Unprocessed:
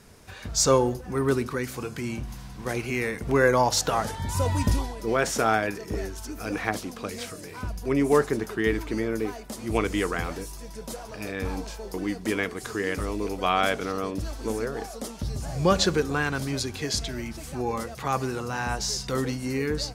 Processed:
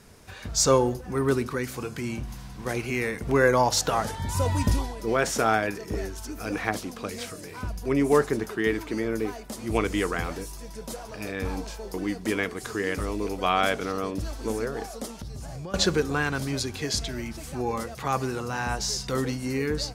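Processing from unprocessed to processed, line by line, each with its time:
8.49–9.05 s: high-pass 120 Hz 6 dB/octave
15.05–15.74 s: compression 12:1, threshold -33 dBFS

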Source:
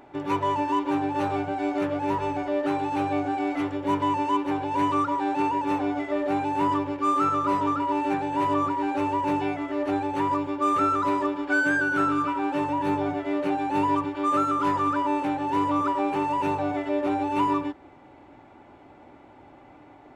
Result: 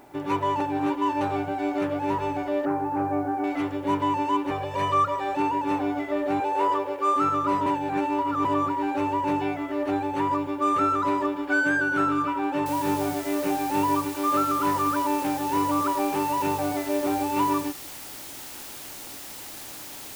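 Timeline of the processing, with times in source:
0.60–1.21 s: reverse
2.65–3.44 s: low-pass 1.7 kHz 24 dB/octave
4.50–5.37 s: comb 1.7 ms, depth 74%
6.40–7.16 s: resonant low shelf 310 Hz -13.5 dB, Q 3
7.66–8.45 s: reverse
12.66 s: noise floor step -65 dB -40 dB

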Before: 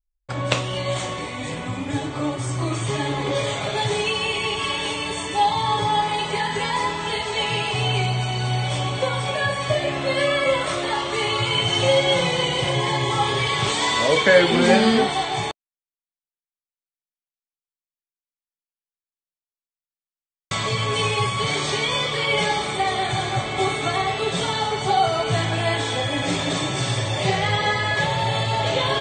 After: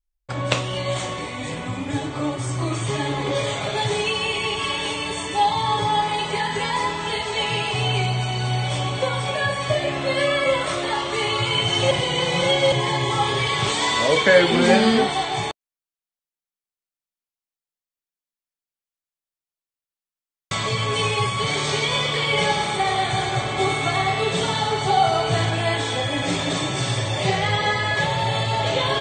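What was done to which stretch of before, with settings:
11.91–12.72 s: reverse
21.47–25.50 s: two-band feedback delay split 450 Hz, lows 82 ms, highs 109 ms, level -8 dB

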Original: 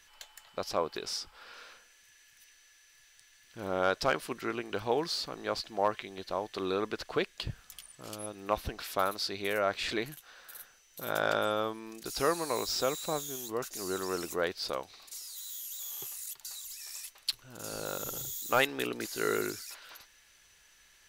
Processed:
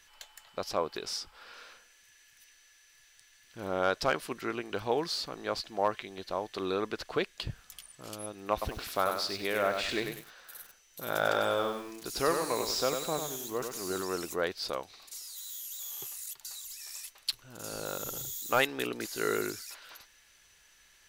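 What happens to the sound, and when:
8.52–14.02 s: bit-crushed delay 96 ms, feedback 35%, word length 8-bit, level -5.5 dB

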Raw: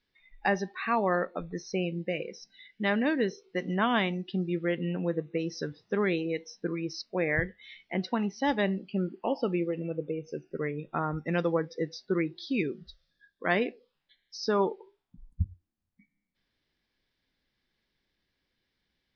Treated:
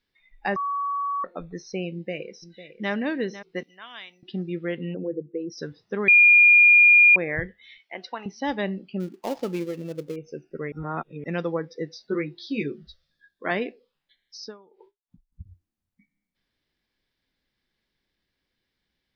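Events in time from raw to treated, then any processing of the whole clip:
0.56–1.24 s: bleep 1.13 kHz -24 dBFS
1.92–2.92 s: echo throw 500 ms, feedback 25%, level -13.5 dB
3.63–4.23 s: differentiator
4.94–5.58 s: resonances exaggerated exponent 2
6.08–7.16 s: bleep 2.42 kHz -10.5 dBFS
7.78–8.26 s: high-pass 570 Hz
9.00–10.16 s: dead-time distortion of 0.13 ms
10.72–11.24 s: reverse
11.99–13.51 s: doubling 14 ms -3.5 dB
14.37–15.45 s: logarithmic tremolo 1.6 Hz -> 5.6 Hz, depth 30 dB

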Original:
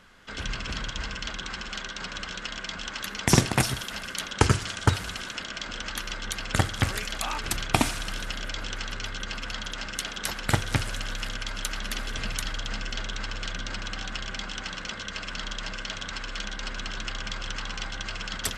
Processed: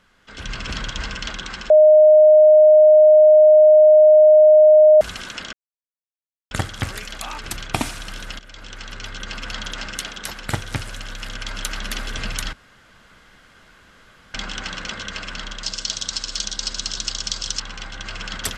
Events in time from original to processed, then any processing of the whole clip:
1.70–5.01 s: bleep 615 Hz -9 dBFS
5.53–6.51 s: mute
8.39–9.70 s: fade in, from -14 dB
12.53–14.34 s: room tone
15.63–17.60 s: resonant high shelf 3.3 kHz +13.5 dB, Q 1.5
whole clip: level rider gain up to 9.5 dB; trim -4.5 dB

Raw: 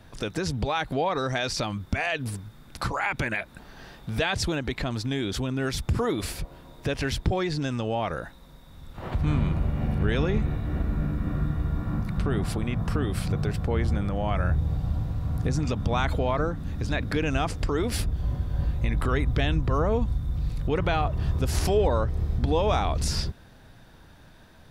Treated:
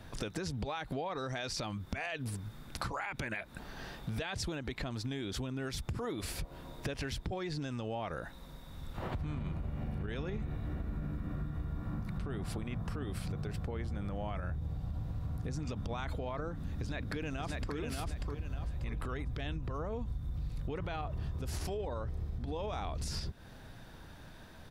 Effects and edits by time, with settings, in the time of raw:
16.61–17.75 s: echo throw 590 ms, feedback 30%, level -2.5 dB
whole clip: peak limiter -18 dBFS; compression, threshold -35 dBFS

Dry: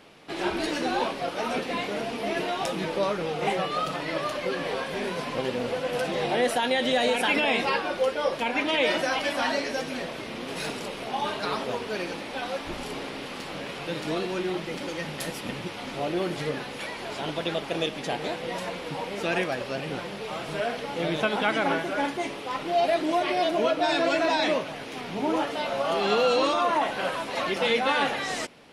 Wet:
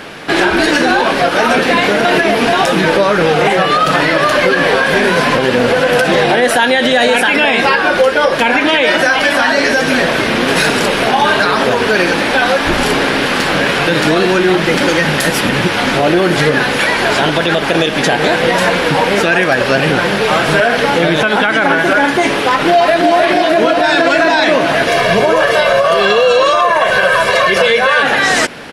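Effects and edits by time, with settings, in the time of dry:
2.05–2.53 s: reverse
22.49–23.11 s: echo throw 310 ms, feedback 75%, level -1 dB
24.87–28.03 s: comb 1.8 ms, depth 87%
whole clip: peaking EQ 1.6 kHz +8.5 dB 0.4 oct; compression 4:1, threshold -28 dBFS; loudness maximiser +22.5 dB; trim -1 dB

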